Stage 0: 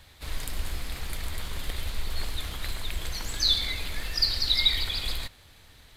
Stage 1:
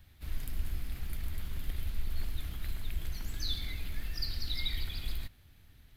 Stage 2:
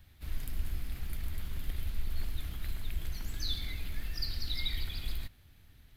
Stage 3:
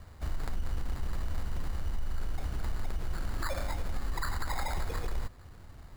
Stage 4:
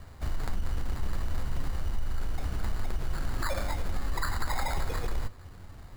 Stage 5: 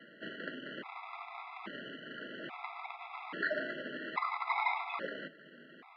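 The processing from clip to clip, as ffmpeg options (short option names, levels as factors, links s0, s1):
-af "equalizer=f=500:t=o:w=1:g=-10,equalizer=f=1000:t=o:w=1:g=-10,equalizer=f=2000:t=o:w=1:g=-5,equalizer=f=4000:t=o:w=1:g=-9,equalizer=f=8000:t=o:w=1:g=-12,volume=0.794"
-af anull
-filter_complex "[0:a]asplit=2[s0][s1];[s1]acompressor=threshold=0.01:ratio=6,volume=1.33[s2];[s0][s2]amix=inputs=2:normalize=0,acrusher=samples=15:mix=1:aa=0.000001,alimiter=level_in=1.26:limit=0.0631:level=0:latency=1:release=30,volume=0.794,volume=1.19"
-af "flanger=delay=7.3:depth=3.7:regen=74:speed=0.63:shape=sinusoidal,volume=2.37"
-af "crystalizer=i=6.5:c=0,highpass=f=170:t=q:w=0.5412,highpass=f=170:t=q:w=1.307,lowpass=f=2900:t=q:w=0.5176,lowpass=f=2900:t=q:w=0.7071,lowpass=f=2900:t=q:w=1.932,afreqshift=63,afftfilt=real='re*gt(sin(2*PI*0.6*pts/sr)*(1-2*mod(floor(b*sr/1024/670),2)),0)':imag='im*gt(sin(2*PI*0.6*pts/sr)*(1-2*mod(floor(b*sr/1024/670),2)),0)':win_size=1024:overlap=0.75"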